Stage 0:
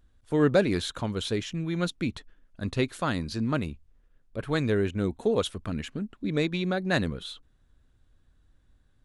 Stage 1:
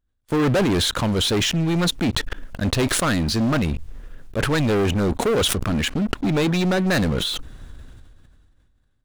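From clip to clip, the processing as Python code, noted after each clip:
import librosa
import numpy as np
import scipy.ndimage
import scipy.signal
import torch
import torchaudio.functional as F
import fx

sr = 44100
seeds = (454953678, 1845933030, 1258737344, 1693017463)

y = fx.leveller(x, sr, passes=5)
y = fx.sustainer(y, sr, db_per_s=25.0)
y = F.gain(torch.from_numpy(y), -5.0).numpy()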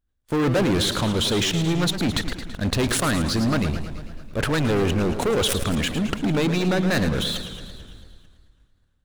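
y = fx.echo_feedback(x, sr, ms=221, feedback_pct=55, wet_db=-20.5)
y = fx.echo_warbled(y, sr, ms=111, feedback_pct=61, rate_hz=2.8, cents=176, wet_db=-10.0)
y = F.gain(torch.from_numpy(y), -2.0).numpy()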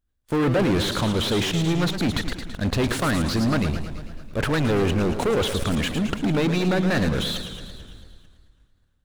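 y = fx.slew_limit(x, sr, full_power_hz=210.0)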